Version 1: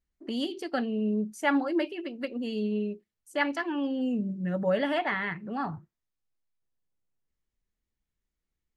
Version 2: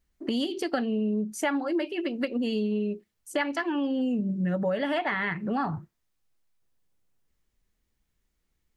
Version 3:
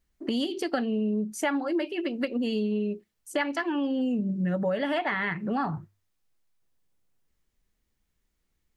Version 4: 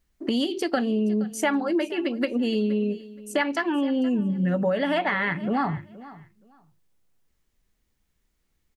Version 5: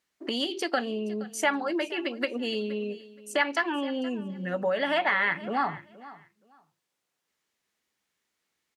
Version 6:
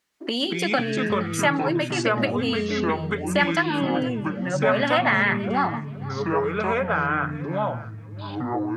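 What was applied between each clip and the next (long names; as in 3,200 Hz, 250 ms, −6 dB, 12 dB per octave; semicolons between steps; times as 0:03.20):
downward compressor, threshold −34 dBFS, peak gain reduction 13 dB; level +9 dB
mains-hum notches 50/100 Hz
repeating echo 472 ms, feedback 19%, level −18.5 dB; level +3.5 dB
meter weighting curve A
delay with pitch and tempo change per echo 140 ms, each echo −5 semitones, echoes 3; level +4 dB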